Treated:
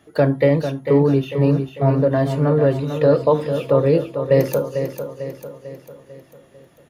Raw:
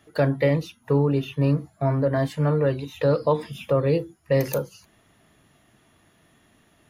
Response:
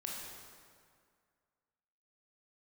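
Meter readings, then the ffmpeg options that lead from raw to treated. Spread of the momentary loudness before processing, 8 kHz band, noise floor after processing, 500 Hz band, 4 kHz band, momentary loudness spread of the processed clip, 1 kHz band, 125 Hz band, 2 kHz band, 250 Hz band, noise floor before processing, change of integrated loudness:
5 LU, n/a, -52 dBFS, +6.5 dB, +2.0 dB, 14 LU, +4.5 dB, +4.0 dB, +2.5 dB, +6.0 dB, -61 dBFS, +5.5 dB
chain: -filter_complex "[0:a]equalizer=f=370:t=o:w=2.6:g=5.5,aecho=1:1:447|894|1341|1788|2235|2682:0.376|0.188|0.094|0.047|0.0235|0.0117,asplit=2[a][b];[1:a]atrim=start_sample=2205,atrim=end_sample=3969[c];[b][c]afir=irnorm=-1:irlink=0,volume=-15.5dB[d];[a][d]amix=inputs=2:normalize=0"

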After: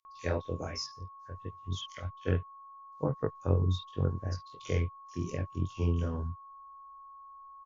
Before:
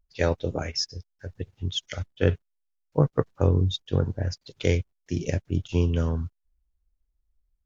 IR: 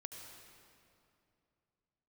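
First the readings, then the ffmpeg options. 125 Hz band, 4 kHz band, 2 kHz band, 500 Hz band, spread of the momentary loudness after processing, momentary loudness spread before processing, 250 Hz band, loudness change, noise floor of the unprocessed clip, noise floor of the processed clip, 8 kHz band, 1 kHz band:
-6.5 dB, -10.5 dB, -8.5 dB, -8.5 dB, 20 LU, 13 LU, -8.0 dB, -7.0 dB, -77 dBFS, -51 dBFS, n/a, -2.5 dB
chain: -filter_complex "[0:a]flanger=delay=20:depth=3.5:speed=2.8,aeval=exprs='val(0)+0.00708*sin(2*PI*1100*n/s)':c=same,acrossover=split=3500[a][b];[a]adelay=50[c];[c][b]amix=inputs=2:normalize=0,volume=-5dB"

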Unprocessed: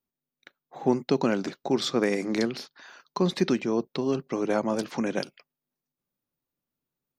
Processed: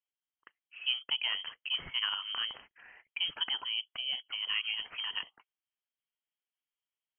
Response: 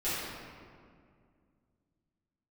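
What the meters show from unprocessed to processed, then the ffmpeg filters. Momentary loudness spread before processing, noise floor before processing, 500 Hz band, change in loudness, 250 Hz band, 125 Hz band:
7 LU, under -85 dBFS, -34.5 dB, -6.0 dB, under -35 dB, under -25 dB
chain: -af "lowshelf=f=300:g=-10.5,acrusher=bits=8:mode=log:mix=0:aa=0.000001,lowpass=f=2.9k:t=q:w=0.5098,lowpass=f=2.9k:t=q:w=0.6013,lowpass=f=2.9k:t=q:w=0.9,lowpass=f=2.9k:t=q:w=2.563,afreqshift=-3400,volume=-5dB"

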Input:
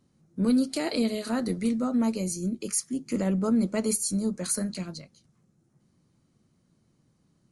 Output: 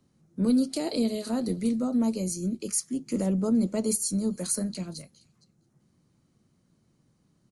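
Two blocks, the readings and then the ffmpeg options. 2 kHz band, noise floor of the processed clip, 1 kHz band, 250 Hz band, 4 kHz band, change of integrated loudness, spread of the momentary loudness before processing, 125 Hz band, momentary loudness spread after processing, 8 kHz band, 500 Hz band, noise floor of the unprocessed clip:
-7.5 dB, -69 dBFS, -3.5 dB, 0.0 dB, -1.5 dB, 0.0 dB, 7 LU, 0.0 dB, 7 LU, 0.0 dB, -0.5 dB, -69 dBFS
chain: -filter_complex "[0:a]acrossover=split=110|1000|3000[a][b][c][d];[c]acompressor=threshold=-56dB:ratio=6[e];[d]aecho=1:1:464:0.0944[f];[a][b][e][f]amix=inputs=4:normalize=0"

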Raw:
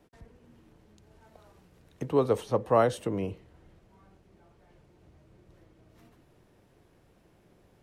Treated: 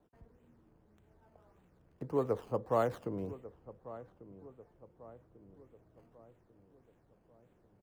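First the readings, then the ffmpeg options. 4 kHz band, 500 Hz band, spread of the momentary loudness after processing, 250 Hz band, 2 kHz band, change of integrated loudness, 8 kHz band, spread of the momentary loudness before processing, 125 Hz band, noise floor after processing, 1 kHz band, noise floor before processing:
under -10 dB, -7.5 dB, 23 LU, -7.5 dB, -9.0 dB, -8.5 dB, under -10 dB, 12 LU, -7.5 dB, -69 dBFS, -7.5 dB, -63 dBFS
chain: -filter_complex "[0:a]acrossover=split=1900[a][b];[b]acrusher=samples=16:mix=1:aa=0.000001:lfo=1:lforange=16:lforate=1.7[c];[a][c]amix=inputs=2:normalize=0,asplit=2[d][e];[e]adelay=1144,lowpass=f=1.2k:p=1,volume=-15.5dB,asplit=2[f][g];[g]adelay=1144,lowpass=f=1.2k:p=1,volume=0.52,asplit=2[h][i];[i]adelay=1144,lowpass=f=1.2k:p=1,volume=0.52,asplit=2[j][k];[k]adelay=1144,lowpass=f=1.2k:p=1,volume=0.52,asplit=2[l][m];[m]adelay=1144,lowpass=f=1.2k:p=1,volume=0.52[n];[d][f][h][j][l][n]amix=inputs=6:normalize=0,volume=-7.5dB"

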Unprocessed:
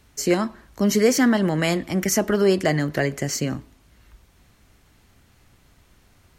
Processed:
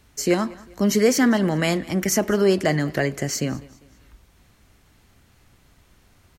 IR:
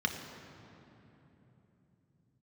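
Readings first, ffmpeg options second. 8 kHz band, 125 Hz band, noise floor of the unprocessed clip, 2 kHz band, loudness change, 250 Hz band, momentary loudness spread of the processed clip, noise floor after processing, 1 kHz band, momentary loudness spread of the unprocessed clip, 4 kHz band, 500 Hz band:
0.0 dB, 0.0 dB, -58 dBFS, 0.0 dB, 0.0 dB, 0.0 dB, 8 LU, -58 dBFS, 0.0 dB, 8 LU, 0.0 dB, 0.0 dB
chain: -af "aecho=1:1:199|398|597:0.0794|0.0326|0.0134"

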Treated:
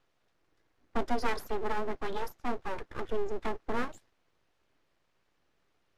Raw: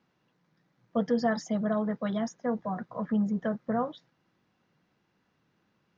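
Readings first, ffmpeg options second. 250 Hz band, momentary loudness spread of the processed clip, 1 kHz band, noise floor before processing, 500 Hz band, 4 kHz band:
-11.5 dB, 6 LU, 0.0 dB, -74 dBFS, -3.5 dB, +1.0 dB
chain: -af "aeval=exprs='abs(val(0))':c=same" -ar 32000 -c:a libmp3lame -b:a 80k

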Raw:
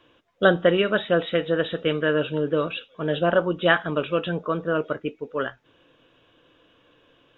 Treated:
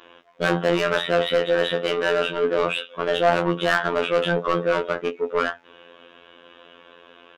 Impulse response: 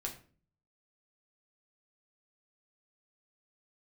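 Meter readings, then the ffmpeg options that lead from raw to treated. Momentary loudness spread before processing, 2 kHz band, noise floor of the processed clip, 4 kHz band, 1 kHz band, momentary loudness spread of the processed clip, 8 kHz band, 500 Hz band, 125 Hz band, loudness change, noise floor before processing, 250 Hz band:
10 LU, +1.0 dB, -52 dBFS, +3.0 dB, +4.0 dB, 5 LU, n/a, +1.5 dB, -2.0 dB, +1.5 dB, -61 dBFS, -2.0 dB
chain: -filter_complex "[0:a]asplit=2[a][b];[b]highpass=f=720:p=1,volume=31dB,asoftclip=type=tanh:threshold=-2dB[c];[a][c]amix=inputs=2:normalize=0,lowpass=f=2k:p=1,volume=-6dB,asplit=2[d][e];[e]adelay=16,volume=-7.5dB[f];[d][f]amix=inputs=2:normalize=0,afftfilt=real='hypot(re,im)*cos(PI*b)':imag='0':win_size=2048:overlap=0.75,volume=-7dB"

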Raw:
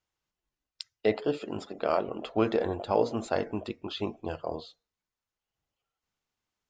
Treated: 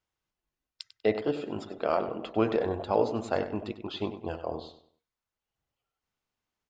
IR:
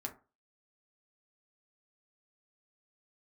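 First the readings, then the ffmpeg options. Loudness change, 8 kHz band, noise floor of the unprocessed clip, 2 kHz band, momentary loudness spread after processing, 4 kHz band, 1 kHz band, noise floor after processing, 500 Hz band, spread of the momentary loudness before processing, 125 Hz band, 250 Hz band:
0.0 dB, n/a, under -85 dBFS, -0.5 dB, 10 LU, -1.5 dB, 0.0 dB, under -85 dBFS, 0.0 dB, 11 LU, +0.5 dB, 0.0 dB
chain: -filter_complex "[0:a]highshelf=f=5k:g=-5.5,asplit=2[a][b];[b]adelay=97,lowpass=f=3.8k:p=1,volume=-10.5dB,asplit=2[c][d];[d]adelay=97,lowpass=f=3.8k:p=1,volume=0.34,asplit=2[e][f];[f]adelay=97,lowpass=f=3.8k:p=1,volume=0.34,asplit=2[g][h];[h]adelay=97,lowpass=f=3.8k:p=1,volume=0.34[i];[a][c][e][g][i]amix=inputs=5:normalize=0"

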